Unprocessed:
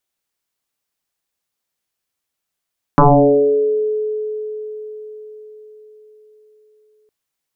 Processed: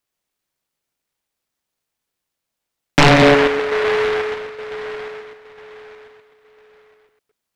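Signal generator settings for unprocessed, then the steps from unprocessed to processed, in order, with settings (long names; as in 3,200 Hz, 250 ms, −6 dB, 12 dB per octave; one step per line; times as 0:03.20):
two-operator FM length 4.11 s, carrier 428 Hz, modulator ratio 0.34, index 5.8, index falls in 1.26 s exponential, decay 4.96 s, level −5 dB
delay that plays each chunk backwards 124 ms, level −7 dB
short delay modulated by noise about 1,300 Hz, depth 0.2 ms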